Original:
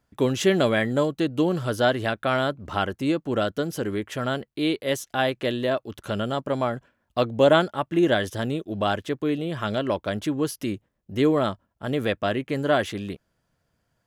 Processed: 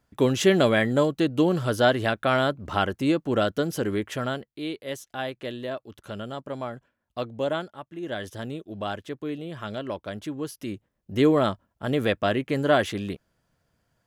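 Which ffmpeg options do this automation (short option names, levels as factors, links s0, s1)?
-af "volume=7.94,afade=t=out:st=4.08:d=0.43:silence=0.354813,afade=t=out:st=7.2:d=0.8:silence=0.398107,afade=t=in:st=8:d=0.27:silence=0.354813,afade=t=in:st=10.58:d=0.6:silence=0.398107"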